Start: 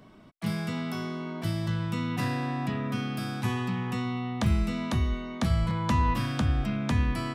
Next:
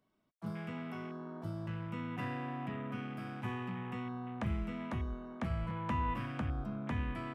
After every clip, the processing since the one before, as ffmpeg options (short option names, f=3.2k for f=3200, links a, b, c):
-af "bass=f=250:g=-4,treble=f=4k:g=2,afwtdn=0.0112,volume=-7.5dB"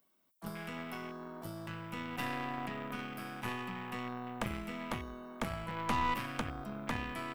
-af "aemphasis=mode=production:type=bsi,aeval=exprs='0.0531*(cos(1*acos(clip(val(0)/0.0531,-1,1)))-cos(1*PI/2))+0.0133*(cos(6*acos(clip(val(0)/0.0531,-1,1)))-cos(6*PI/2))+0.00211*(cos(7*acos(clip(val(0)/0.0531,-1,1)))-cos(7*PI/2))+0.00668*(cos(8*acos(clip(val(0)/0.0531,-1,1)))-cos(8*PI/2))':c=same,volume=4.5dB"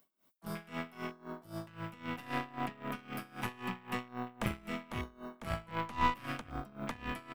-filter_complex "[0:a]asplit=2[a][b];[b]adelay=116.6,volume=-22dB,highshelf=f=4k:g=-2.62[c];[a][c]amix=inputs=2:normalize=0,aeval=exprs='val(0)*pow(10,-21*(0.5-0.5*cos(2*PI*3.8*n/s))/20)':c=same,volume=5.5dB"